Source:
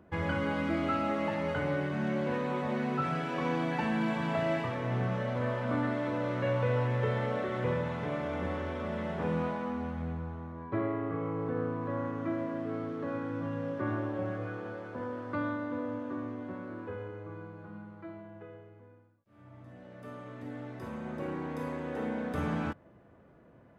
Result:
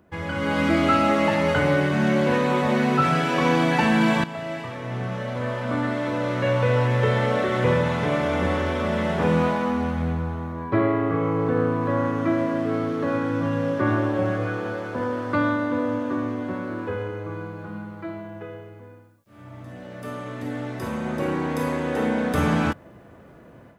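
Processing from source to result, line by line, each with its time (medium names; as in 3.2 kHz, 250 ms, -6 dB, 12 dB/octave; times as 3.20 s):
4.24–7.89 s: fade in, from -14.5 dB
whole clip: level rider gain up to 11 dB; treble shelf 3.5 kHz +9 dB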